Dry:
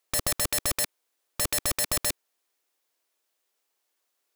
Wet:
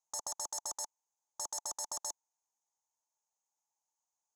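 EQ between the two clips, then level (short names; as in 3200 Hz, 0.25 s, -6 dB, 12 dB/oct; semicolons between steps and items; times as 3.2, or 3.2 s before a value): double band-pass 2400 Hz, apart 2.9 oct; 0.0 dB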